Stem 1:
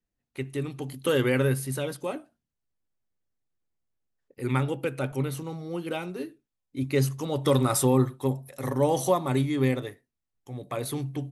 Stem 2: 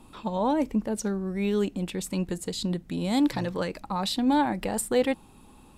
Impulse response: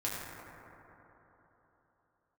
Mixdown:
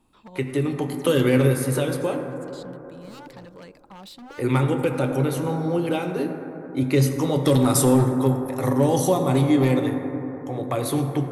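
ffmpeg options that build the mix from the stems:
-filter_complex "[0:a]equalizer=f=710:t=o:w=2.8:g=9.5,acrossover=split=280|3000[s0][s1][s2];[s1]acompressor=threshold=0.0251:ratio=3[s3];[s0][s3][s2]amix=inputs=3:normalize=0,asoftclip=type=hard:threshold=0.168,volume=1.19,asplit=3[s4][s5][s6];[s5]volume=0.531[s7];[1:a]aeval=exprs='0.0631*(abs(mod(val(0)/0.0631+3,4)-2)-1)':c=same,volume=0.224[s8];[s6]apad=whole_len=254805[s9];[s8][s9]sidechaincompress=threshold=0.0141:ratio=8:attack=16:release=390[s10];[2:a]atrim=start_sample=2205[s11];[s7][s11]afir=irnorm=-1:irlink=0[s12];[s4][s10][s12]amix=inputs=3:normalize=0"

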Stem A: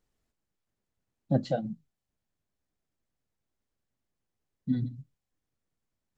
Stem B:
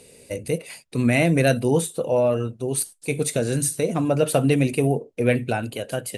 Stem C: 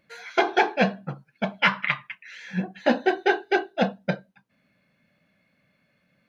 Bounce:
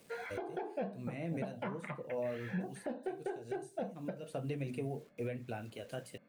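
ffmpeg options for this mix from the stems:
-filter_complex "[0:a]volume=0.188[s0];[1:a]lowpass=7700,acrusher=bits=7:mix=0:aa=0.000001,flanger=delay=8.4:depth=5:regen=-59:speed=1.1:shape=triangular,volume=0.299[s1];[2:a]bandpass=f=410:t=q:w=0.8:csg=0,acontrast=49,volume=1.06[s2];[s0][s1][s2]amix=inputs=3:normalize=0,acrossover=split=760|2300[s3][s4][s5];[s3]acompressor=threshold=0.0355:ratio=4[s6];[s4]acompressor=threshold=0.00631:ratio=4[s7];[s5]acompressor=threshold=0.00224:ratio=4[s8];[s6][s7][s8]amix=inputs=3:normalize=0,alimiter=level_in=1.78:limit=0.0631:level=0:latency=1:release=492,volume=0.562"

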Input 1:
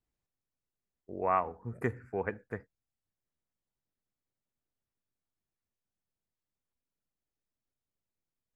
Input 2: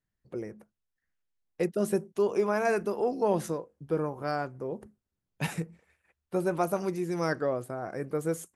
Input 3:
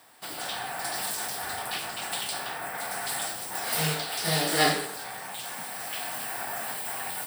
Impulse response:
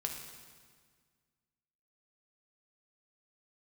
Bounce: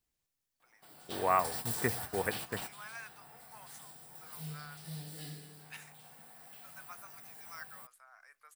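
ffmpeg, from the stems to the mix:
-filter_complex "[0:a]highshelf=f=2100:g=10,volume=0.841,asplit=2[s0][s1];[1:a]highpass=f=1200:w=0.5412,highpass=f=1200:w=1.3066,adelay=300,volume=0.266[s2];[2:a]equalizer=f=5400:w=0.34:g=-9,acrossover=split=230|3000[s3][s4][s5];[s4]acompressor=threshold=0.00562:ratio=6[s6];[s3][s6][s5]amix=inputs=3:normalize=0,adelay=600,volume=0.944,asplit=2[s7][s8];[s8]volume=0.178[s9];[s1]apad=whole_len=346976[s10];[s7][s10]sidechaingate=range=0.0224:threshold=0.00398:ratio=16:detection=peak[s11];[3:a]atrim=start_sample=2205[s12];[s9][s12]afir=irnorm=-1:irlink=0[s13];[s0][s2][s11][s13]amix=inputs=4:normalize=0"

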